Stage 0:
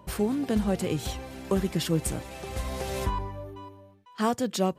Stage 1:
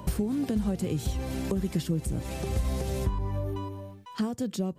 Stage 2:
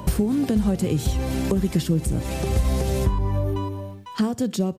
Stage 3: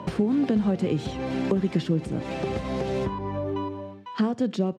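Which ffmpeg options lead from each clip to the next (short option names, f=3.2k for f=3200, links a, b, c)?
-filter_complex "[0:a]acompressor=threshold=-36dB:ratio=6,bass=f=250:g=5,treble=f=4k:g=5,acrossover=split=490[a][b];[b]acompressor=threshold=-48dB:ratio=6[c];[a][c]amix=inputs=2:normalize=0,volume=8dB"
-af "aecho=1:1:61|122|183:0.0841|0.0303|0.0109,volume=7dB"
-af "highpass=180,lowpass=3.3k"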